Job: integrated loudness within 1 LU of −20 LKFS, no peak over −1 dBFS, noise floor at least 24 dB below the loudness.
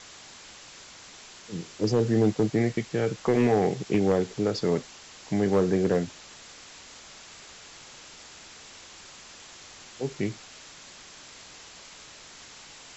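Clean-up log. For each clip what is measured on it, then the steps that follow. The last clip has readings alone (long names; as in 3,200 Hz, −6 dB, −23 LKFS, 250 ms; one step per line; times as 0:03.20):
share of clipped samples 0.4%; peaks flattened at −15.0 dBFS; background noise floor −48 dBFS; target noise floor −51 dBFS; integrated loudness −26.5 LKFS; sample peak −15.0 dBFS; target loudness −20.0 LKFS
→ clipped peaks rebuilt −15 dBFS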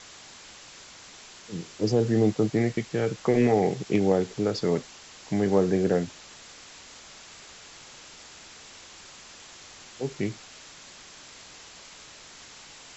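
share of clipped samples 0.0%; background noise floor −48 dBFS; target noise floor −50 dBFS
→ broadband denoise 6 dB, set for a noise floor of −48 dBFS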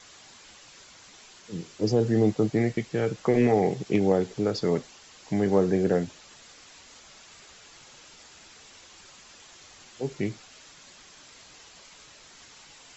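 background noise floor −52 dBFS; integrated loudness −26.0 LKFS; sample peak −9.0 dBFS; target loudness −20.0 LKFS
→ level +6 dB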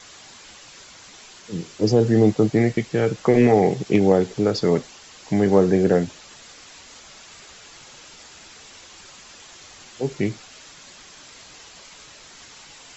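integrated loudness −20.0 LKFS; sample peak −3.0 dBFS; background noise floor −46 dBFS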